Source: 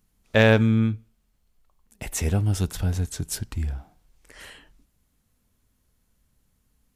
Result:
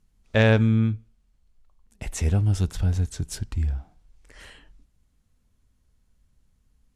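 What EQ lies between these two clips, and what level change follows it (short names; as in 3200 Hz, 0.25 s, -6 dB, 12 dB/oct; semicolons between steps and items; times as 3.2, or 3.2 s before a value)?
LPF 9100 Hz 12 dB/oct; low shelf 100 Hz +9.5 dB; -3.0 dB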